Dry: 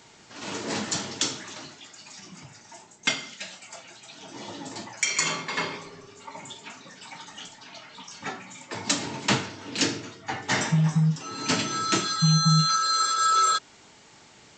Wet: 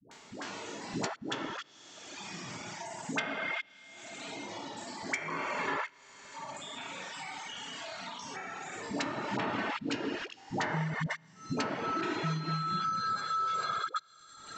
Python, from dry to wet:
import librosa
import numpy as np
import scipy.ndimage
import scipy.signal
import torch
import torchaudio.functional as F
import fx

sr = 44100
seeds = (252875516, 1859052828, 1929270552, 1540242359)

y = fx.spec_trails(x, sr, decay_s=2.69)
y = fx.low_shelf(y, sr, hz=180.0, db=-10.5)
y = fx.rev_schroeder(y, sr, rt60_s=1.1, comb_ms=25, drr_db=2.5)
y = fx.level_steps(y, sr, step_db=23)
y = fx.dereverb_blind(y, sr, rt60_s=1.4)
y = fx.env_lowpass_down(y, sr, base_hz=1300.0, full_db=-21.5)
y = fx.dispersion(y, sr, late='highs', ms=114.0, hz=510.0)
y = fx.band_squash(y, sr, depth_pct=70)
y = y * librosa.db_to_amplitude(-3.0)